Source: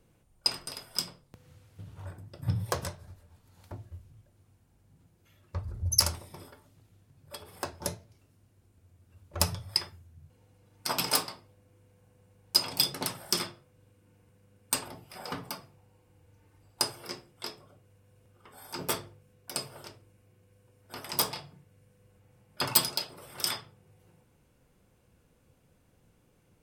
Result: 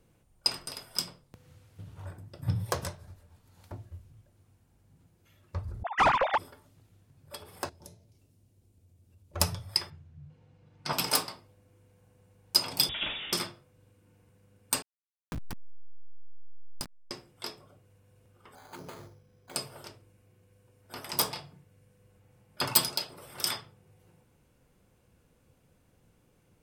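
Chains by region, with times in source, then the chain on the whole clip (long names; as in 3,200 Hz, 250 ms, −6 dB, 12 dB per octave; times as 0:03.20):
0:05.83–0:06.38: three sine waves on the formant tracks + mid-hump overdrive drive 26 dB, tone 1,000 Hz, clips at −12.5 dBFS + bad sample-rate conversion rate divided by 2×, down none, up filtered
0:07.69–0:09.35: parametric band 1,400 Hz −10.5 dB 1.7 octaves + downward compressor 2 to 1, threshold −58 dBFS
0:09.90–0:10.93: low-pass filter 4,400 Hz + parametric band 150 Hz +14 dB 0.25 octaves
0:12.89–0:13.33: converter with a step at zero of −34.5 dBFS + voice inversion scrambler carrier 3,600 Hz
0:14.82–0:17.11: hold until the input has moved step −25.5 dBFS + low shelf with overshoot 300 Hz +7.5 dB, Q 1.5 + downward compressor 2.5 to 1, threshold −37 dBFS
0:18.55–0:19.56: bad sample-rate conversion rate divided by 8×, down filtered, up hold + downward compressor 16 to 1, threshold −40 dBFS
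whole clip: no processing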